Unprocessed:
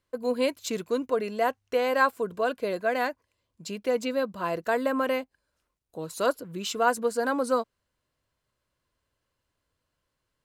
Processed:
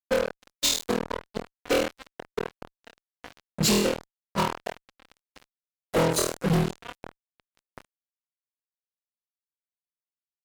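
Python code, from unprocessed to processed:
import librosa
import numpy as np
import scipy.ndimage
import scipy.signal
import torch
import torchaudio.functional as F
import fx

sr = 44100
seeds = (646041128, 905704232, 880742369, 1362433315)

y = fx.phase_scramble(x, sr, seeds[0], window_ms=50)
y = fx.high_shelf(y, sr, hz=12000.0, db=-9.5)
y = fx.rev_double_slope(y, sr, seeds[1], early_s=0.66, late_s=1.9, knee_db=-18, drr_db=18.5)
y = fx.gate_flip(y, sr, shuts_db=-25.0, range_db=-39)
y = fx.room_flutter(y, sr, wall_m=4.2, rt60_s=0.42)
y = fx.fuzz(y, sr, gain_db=50.0, gate_db=-53.0)
y = F.gain(torch.from_numpy(y), -6.0).numpy()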